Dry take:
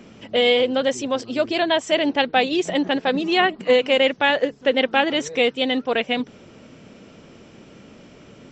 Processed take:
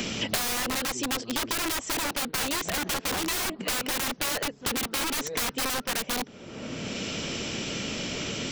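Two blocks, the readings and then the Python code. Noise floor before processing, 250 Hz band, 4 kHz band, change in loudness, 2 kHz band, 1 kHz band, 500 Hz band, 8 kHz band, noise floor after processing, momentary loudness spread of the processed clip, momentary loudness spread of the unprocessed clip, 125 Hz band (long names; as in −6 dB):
−48 dBFS, −9.5 dB, −5.5 dB, −8.5 dB, −8.0 dB, −9.0 dB, −16.0 dB, +10.0 dB, −47 dBFS, 5 LU, 6 LU, +3.0 dB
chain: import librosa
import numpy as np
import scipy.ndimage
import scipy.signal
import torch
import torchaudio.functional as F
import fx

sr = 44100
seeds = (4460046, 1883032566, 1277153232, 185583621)

y = (np.mod(10.0 ** (20.0 / 20.0) * x + 1.0, 2.0) - 1.0) / 10.0 ** (20.0 / 20.0)
y = fx.band_squash(y, sr, depth_pct=100)
y = y * librosa.db_to_amplitude(-4.0)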